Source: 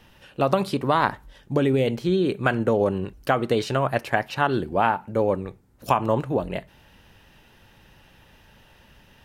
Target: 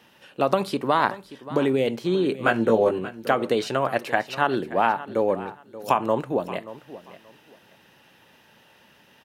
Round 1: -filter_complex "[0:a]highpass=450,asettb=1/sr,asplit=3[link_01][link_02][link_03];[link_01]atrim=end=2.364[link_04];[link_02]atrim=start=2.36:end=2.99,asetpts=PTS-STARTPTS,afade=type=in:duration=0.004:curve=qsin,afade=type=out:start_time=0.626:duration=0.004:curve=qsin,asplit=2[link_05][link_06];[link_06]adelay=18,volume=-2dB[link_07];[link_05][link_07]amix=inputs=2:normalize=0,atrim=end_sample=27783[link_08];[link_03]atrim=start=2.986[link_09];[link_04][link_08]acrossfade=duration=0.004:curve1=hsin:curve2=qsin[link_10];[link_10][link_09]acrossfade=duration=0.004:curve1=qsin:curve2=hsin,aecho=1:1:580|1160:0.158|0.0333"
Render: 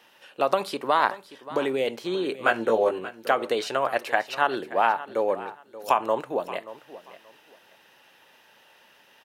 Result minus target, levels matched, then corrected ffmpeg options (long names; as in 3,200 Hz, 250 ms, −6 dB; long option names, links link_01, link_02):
250 Hz band −5.5 dB
-filter_complex "[0:a]highpass=200,asettb=1/sr,asplit=3[link_01][link_02][link_03];[link_01]atrim=end=2.364[link_04];[link_02]atrim=start=2.36:end=2.99,asetpts=PTS-STARTPTS,afade=type=in:duration=0.004:curve=qsin,afade=type=out:start_time=0.626:duration=0.004:curve=qsin,asplit=2[link_05][link_06];[link_06]adelay=18,volume=-2dB[link_07];[link_05][link_07]amix=inputs=2:normalize=0,atrim=end_sample=27783[link_08];[link_03]atrim=start=2.986[link_09];[link_04][link_08]acrossfade=duration=0.004:curve1=hsin:curve2=qsin[link_10];[link_10][link_09]acrossfade=duration=0.004:curve1=qsin:curve2=hsin,aecho=1:1:580|1160:0.158|0.0333"